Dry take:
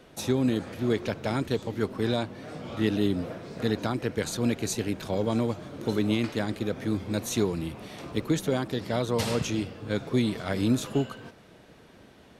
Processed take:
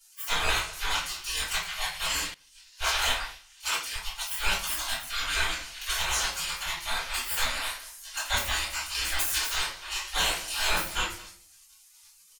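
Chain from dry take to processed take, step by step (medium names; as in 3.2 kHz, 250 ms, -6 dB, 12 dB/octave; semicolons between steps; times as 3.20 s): tracing distortion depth 0.1 ms; spectral gate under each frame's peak -30 dB weak; speakerphone echo 210 ms, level -20 dB; in parallel at -1 dB: peak limiter -34 dBFS, peak gain reduction 11 dB; on the sum: simulated room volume 44 m³, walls mixed, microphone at 3.2 m; 2.34–4.31 s: three bands expanded up and down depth 100%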